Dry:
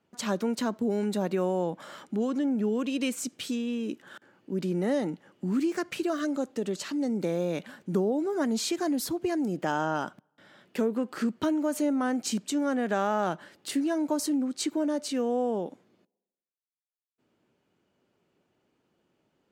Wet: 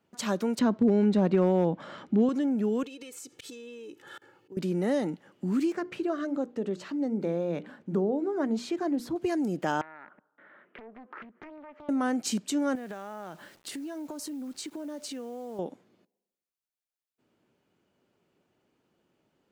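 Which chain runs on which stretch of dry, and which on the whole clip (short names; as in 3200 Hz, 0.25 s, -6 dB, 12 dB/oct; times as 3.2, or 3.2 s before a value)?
0.59–2.29 LPF 4200 Hz + low shelf 350 Hz +9 dB + hard clip -15.5 dBFS
2.83–4.57 comb 2.3 ms, depth 76% + auto swell 0.118 s + compressor 16:1, threshold -40 dBFS
5.72–9.16 LPF 1400 Hz 6 dB/oct + notches 60/120/180/240/300/360/420/480 Hz
9.81–11.89 compressor 12:1, threshold -40 dBFS + speaker cabinet 310–2100 Hz, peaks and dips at 760 Hz -4 dB, 1300 Hz +4 dB, 1900 Hz +4 dB + Doppler distortion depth 0.7 ms
12.75–15.59 compressor 8:1, threshold -35 dBFS + requantised 10-bit, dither none
whole clip: dry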